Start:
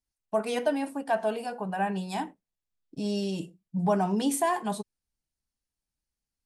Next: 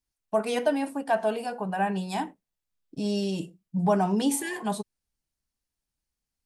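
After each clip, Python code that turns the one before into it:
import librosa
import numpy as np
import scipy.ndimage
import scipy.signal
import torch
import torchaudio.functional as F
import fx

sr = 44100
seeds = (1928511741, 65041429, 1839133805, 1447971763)

y = fx.spec_repair(x, sr, seeds[0], start_s=4.34, length_s=0.23, low_hz=630.0, high_hz=1500.0, source='both')
y = F.gain(torch.from_numpy(y), 2.0).numpy()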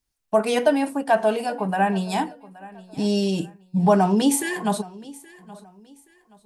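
y = fx.echo_feedback(x, sr, ms=824, feedback_pct=32, wet_db=-20.5)
y = F.gain(torch.from_numpy(y), 6.0).numpy()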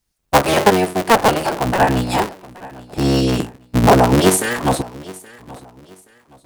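y = fx.cycle_switch(x, sr, every=3, mode='inverted')
y = F.gain(torch.from_numpy(y), 6.0).numpy()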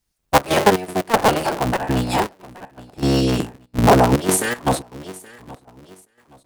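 y = fx.step_gate(x, sr, bpm=119, pattern='xxx.xx.x.xxxxx.', floor_db=-12.0, edge_ms=4.5)
y = F.gain(torch.from_numpy(y), -1.5).numpy()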